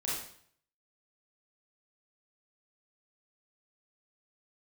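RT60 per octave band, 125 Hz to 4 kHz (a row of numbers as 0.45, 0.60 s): 0.75, 0.60, 0.60, 0.60, 0.55, 0.55 s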